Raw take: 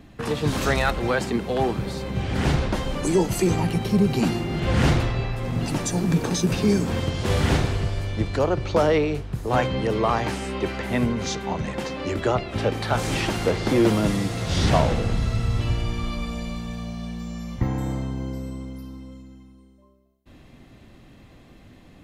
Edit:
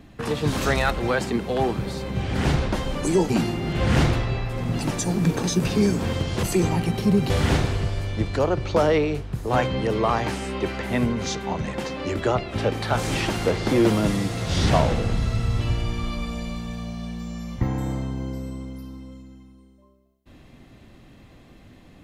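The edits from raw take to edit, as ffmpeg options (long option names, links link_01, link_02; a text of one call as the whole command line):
ffmpeg -i in.wav -filter_complex "[0:a]asplit=4[link_01][link_02][link_03][link_04];[link_01]atrim=end=3.302[link_05];[link_02]atrim=start=4.168:end=7.302[link_06];[link_03]atrim=start=3.298:end=4.172[link_07];[link_04]atrim=start=7.298[link_08];[link_05][link_06]acrossfade=duration=0.004:curve1=hsin:curve2=hsin[link_09];[link_09][link_07]acrossfade=duration=0.004:curve1=hsin:curve2=hsin[link_10];[link_10][link_08]acrossfade=duration=0.004:curve1=hsin:curve2=hsin" out.wav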